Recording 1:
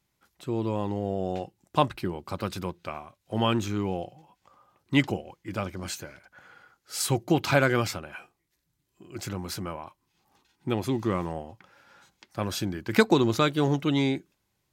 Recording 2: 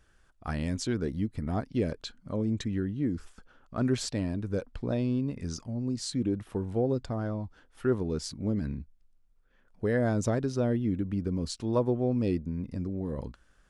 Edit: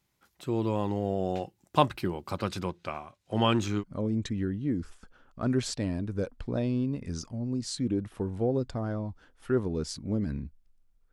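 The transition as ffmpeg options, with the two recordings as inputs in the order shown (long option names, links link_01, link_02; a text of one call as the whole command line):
ffmpeg -i cue0.wav -i cue1.wav -filter_complex "[0:a]asettb=1/sr,asplit=3[link_01][link_02][link_03];[link_01]atrim=end=2.384[link_04];[link_02]atrim=start=2.38:end=3.84,asetpts=PTS-STARTPTS,afade=type=in:duration=0.004:curve=qsin,afade=type=out:start_time=1.456:duration=0.004:curve=qsin,lowpass=9200[link_05];[link_03]atrim=start=3.836[link_06];[link_04][link_05]acrossfade=duration=0.004:curve1=hsin:curve2=qsin[link_07];[link_07][link_06]acrossfade=duration=0.004:curve1=qsin:curve2=hsin,apad=whole_dur=11.12,atrim=end=11.12,atrim=end=3.84,asetpts=PTS-STARTPTS[link_08];[1:a]atrim=start=2.13:end=9.47,asetpts=PTS-STARTPTS[link_09];[link_08][link_09]acrossfade=duration=0.06:curve1=tri:curve2=tri" out.wav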